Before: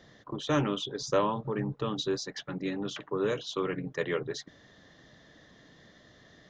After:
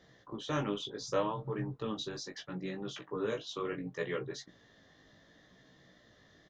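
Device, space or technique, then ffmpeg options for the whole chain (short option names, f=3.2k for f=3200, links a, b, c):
double-tracked vocal: -filter_complex "[0:a]asplit=2[a][b];[b]adelay=22,volume=-13dB[c];[a][c]amix=inputs=2:normalize=0,flanger=delay=15.5:depth=3.9:speed=0.7,volume=-2.5dB"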